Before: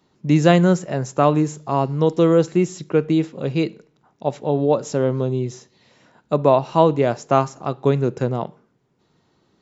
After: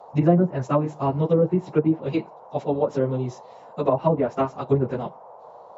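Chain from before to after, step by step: plain phase-vocoder stretch 0.6×; band noise 460–1000 Hz -45 dBFS; low-pass that closes with the level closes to 720 Hz, closed at -14 dBFS

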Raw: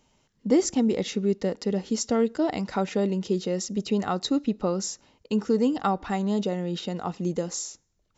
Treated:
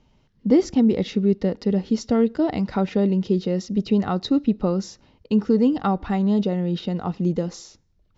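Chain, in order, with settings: low-pass 5.1 kHz 24 dB/octave; bass shelf 250 Hz +11 dB

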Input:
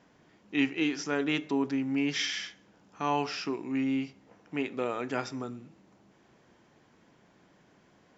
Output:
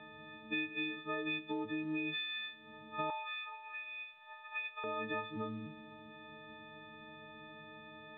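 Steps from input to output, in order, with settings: partials quantised in pitch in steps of 6 st; compression 8:1, threshold -41 dBFS, peak gain reduction 22 dB; 3.10–4.84 s: steep high-pass 750 Hz 36 dB/octave; trim +5 dB; µ-law 64 kbps 8 kHz

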